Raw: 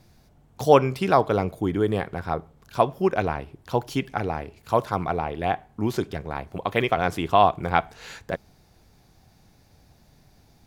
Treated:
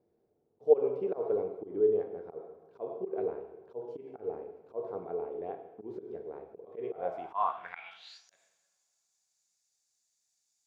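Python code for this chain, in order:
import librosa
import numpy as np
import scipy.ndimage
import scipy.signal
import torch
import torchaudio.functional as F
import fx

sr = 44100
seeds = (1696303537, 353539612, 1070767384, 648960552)

y = fx.rev_double_slope(x, sr, seeds[0], early_s=0.94, late_s=3.1, knee_db=-18, drr_db=4.0)
y = fx.auto_swell(y, sr, attack_ms=124.0)
y = fx.filter_sweep_bandpass(y, sr, from_hz=430.0, to_hz=7200.0, start_s=6.94, end_s=8.38, q=5.4)
y = y * librosa.db_to_amplitude(-2.5)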